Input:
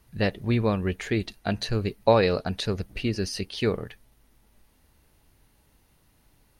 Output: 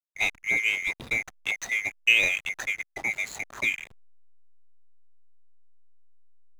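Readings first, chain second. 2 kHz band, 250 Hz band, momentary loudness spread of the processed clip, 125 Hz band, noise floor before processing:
+11.5 dB, −20.0 dB, 10 LU, −23.0 dB, −64 dBFS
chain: neighbouring bands swapped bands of 2,000 Hz
slack as between gear wheels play −28 dBFS
level −1.5 dB

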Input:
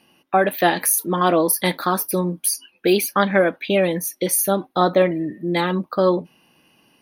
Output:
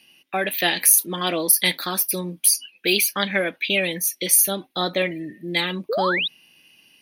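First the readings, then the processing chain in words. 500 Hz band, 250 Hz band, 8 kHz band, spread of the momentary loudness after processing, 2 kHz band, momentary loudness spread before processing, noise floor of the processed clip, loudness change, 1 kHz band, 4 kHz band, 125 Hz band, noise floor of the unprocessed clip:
−7.5 dB, −7.5 dB, +4.0 dB, 9 LU, +1.5 dB, 5 LU, −62 dBFS, −0.5 dB, −7.5 dB, +6.5 dB, −7.0 dB, −62 dBFS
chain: high shelf with overshoot 1,700 Hz +11 dB, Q 1.5
sound drawn into the spectrogram rise, 0:05.89–0:06.28, 400–4,000 Hz −16 dBFS
level −7 dB

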